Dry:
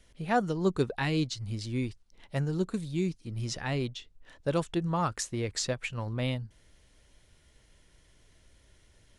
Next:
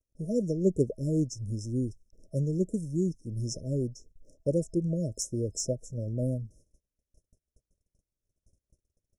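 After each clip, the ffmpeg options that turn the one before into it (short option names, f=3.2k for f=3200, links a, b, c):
-af "aeval=exprs='0.237*(cos(1*acos(clip(val(0)/0.237,-1,1)))-cos(1*PI/2))+0.0168*(cos(3*acos(clip(val(0)/0.237,-1,1)))-cos(3*PI/2))':c=same,afftfilt=real='re*(1-between(b*sr/4096,650,5200))':imag='im*(1-between(b*sr/4096,650,5200))':win_size=4096:overlap=0.75,agate=range=-31dB:threshold=-58dB:ratio=16:detection=peak,volume=3.5dB"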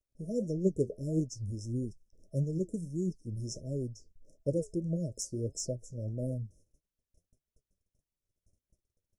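-af "flanger=delay=4.5:depth=7.7:regen=65:speed=1.6:shape=triangular"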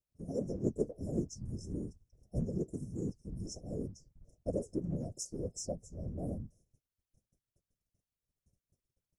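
-af "afftfilt=real='hypot(re,im)*cos(2*PI*random(0))':imag='hypot(re,im)*sin(2*PI*random(1))':win_size=512:overlap=0.75,volume=2dB"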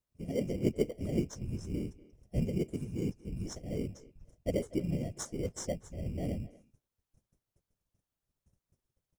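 -filter_complex "[0:a]asplit=2[a][b];[b]acrusher=samples=17:mix=1:aa=0.000001,volume=-6dB[c];[a][c]amix=inputs=2:normalize=0,asplit=2[d][e];[e]adelay=240,highpass=300,lowpass=3.4k,asoftclip=type=hard:threshold=-23.5dB,volume=-18dB[f];[d][f]amix=inputs=2:normalize=0"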